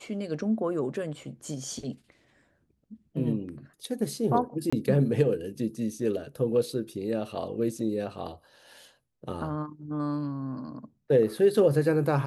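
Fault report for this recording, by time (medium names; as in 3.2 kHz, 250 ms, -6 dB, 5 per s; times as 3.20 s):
4.70–4.72 s: dropout 25 ms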